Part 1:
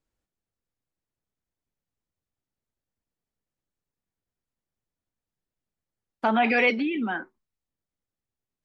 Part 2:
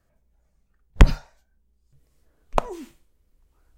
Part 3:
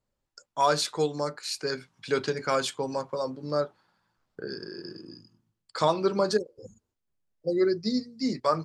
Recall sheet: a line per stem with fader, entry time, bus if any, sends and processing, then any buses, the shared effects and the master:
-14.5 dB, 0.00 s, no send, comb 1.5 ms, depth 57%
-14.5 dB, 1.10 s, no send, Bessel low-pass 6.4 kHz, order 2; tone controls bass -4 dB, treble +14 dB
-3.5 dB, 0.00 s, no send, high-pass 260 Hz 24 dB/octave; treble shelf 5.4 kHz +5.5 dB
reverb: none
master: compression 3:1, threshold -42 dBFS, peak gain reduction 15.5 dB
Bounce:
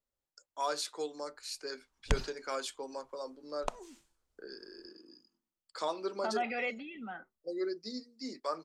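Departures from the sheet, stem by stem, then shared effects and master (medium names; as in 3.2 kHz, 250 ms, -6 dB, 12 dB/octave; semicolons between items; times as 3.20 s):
stem 3 -3.5 dB -> -11.0 dB; master: missing compression 3:1, threshold -42 dBFS, peak gain reduction 15.5 dB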